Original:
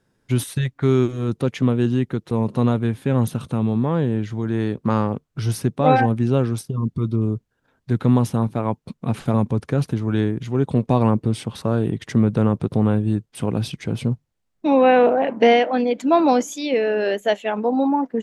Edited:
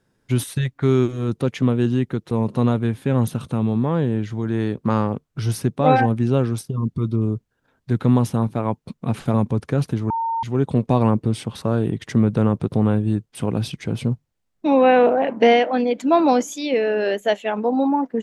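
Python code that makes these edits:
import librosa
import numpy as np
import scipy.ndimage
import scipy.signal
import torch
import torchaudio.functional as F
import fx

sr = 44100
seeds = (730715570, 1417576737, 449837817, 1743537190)

y = fx.edit(x, sr, fx.bleep(start_s=10.1, length_s=0.33, hz=912.0, db=-20.0), tone=tone)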